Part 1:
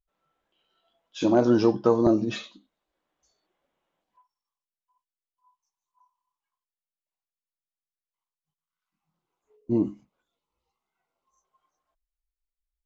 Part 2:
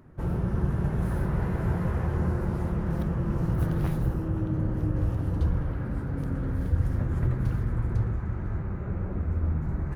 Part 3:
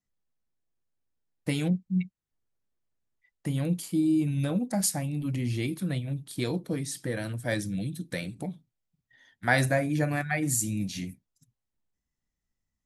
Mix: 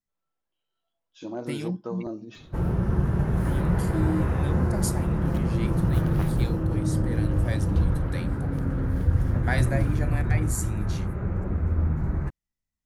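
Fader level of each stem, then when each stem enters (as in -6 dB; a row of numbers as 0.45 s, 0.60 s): -14.0 dB, +3.0 dB, -5.0 dB; 0.00 s, 2.35 s, 0.00 s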